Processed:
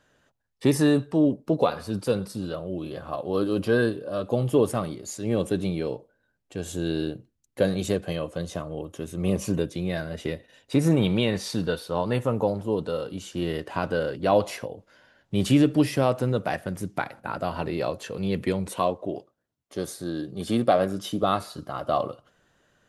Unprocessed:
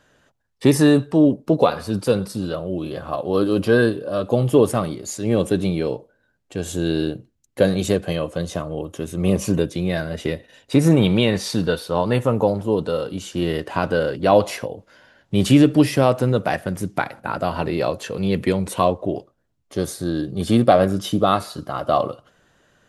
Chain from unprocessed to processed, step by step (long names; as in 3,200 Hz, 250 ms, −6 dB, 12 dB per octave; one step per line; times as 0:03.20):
0:18.73–0:21.23: high-pass filter 170 Hz 6 dB per octave
level −6 dB